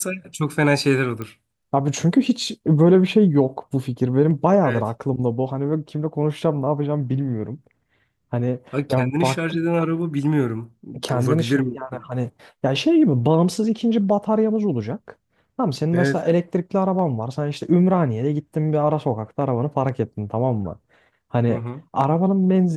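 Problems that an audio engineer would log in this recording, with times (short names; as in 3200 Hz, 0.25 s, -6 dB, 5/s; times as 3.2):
1.22 pop -17 dBFS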